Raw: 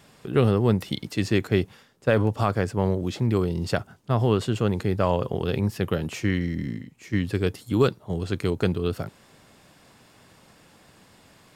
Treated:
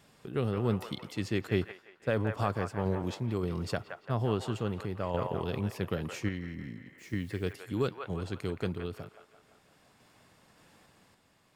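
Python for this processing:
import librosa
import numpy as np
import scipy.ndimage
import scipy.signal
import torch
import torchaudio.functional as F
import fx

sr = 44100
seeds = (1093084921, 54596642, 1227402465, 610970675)

y = fx.echo_wet_bandpass(x, sr, ms=171, feedback_pct=51, hz=1300.0, wet_db=-5.0)
y = fx.tremolo_random(y, sr, seeds[0], hz=3.5, depth_pct=55)
y = fx.quant_dither(y, sr, seeds[1], bits=10, dither='triangular', at=(6.98, 7.53))
y = y * librosa.db_to_amplitude(-6.5)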